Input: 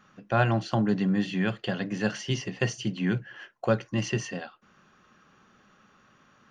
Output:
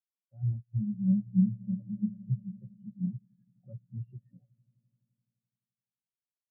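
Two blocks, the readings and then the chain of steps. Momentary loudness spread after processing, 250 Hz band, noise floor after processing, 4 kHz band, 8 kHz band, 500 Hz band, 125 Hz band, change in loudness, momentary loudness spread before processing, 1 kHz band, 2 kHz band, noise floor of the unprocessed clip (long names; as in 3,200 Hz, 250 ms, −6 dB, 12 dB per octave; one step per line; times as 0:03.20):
19 LU, −3.0 dB, below −85 dBFS, below −40 dB, below −40 dB, below −30 dB, −3.0 dB, −3.5 dB, 8 LU, below −40 dB, below −40 dB, −62 dBFS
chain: each half-wave held at its own peak
elliptic low-pass filter 3,800 Hz
brickwall limiter −18.5 dBFS, peak gain reduction 11.5 dB
echo that builds up and dies away 85 ms, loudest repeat 8, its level −13.5 dB
every bin expanded away from the loudest bin 4 to 1
level −1.5 dB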